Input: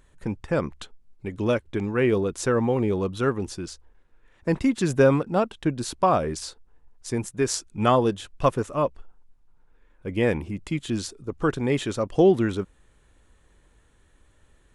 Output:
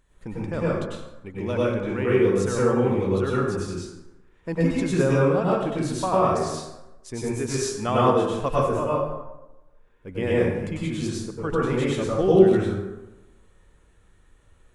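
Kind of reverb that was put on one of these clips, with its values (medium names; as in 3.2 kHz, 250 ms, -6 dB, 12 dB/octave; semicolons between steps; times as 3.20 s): plate-style reverb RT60 1 s, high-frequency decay 0.55×, pre-delay 85 ms, DRR -7 dB; trim -7 dB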